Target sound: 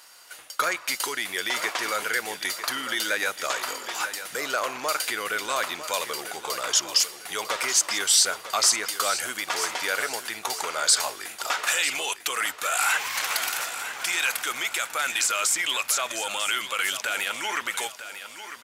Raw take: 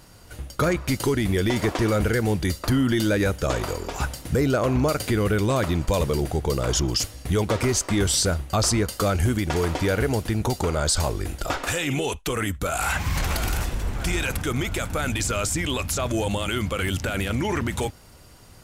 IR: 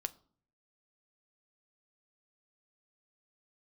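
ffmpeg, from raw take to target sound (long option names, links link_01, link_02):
-filter_complex "[0:a]highpass=1100,asplit=2[link_01][link_02];[link_02]aecho=0:1:949|1898|2847|3796:0.266|0.0931|0.0326|0.0114[link_03];[link_01][link_03]amix=inputs=2:normalize=0,volume=4dB"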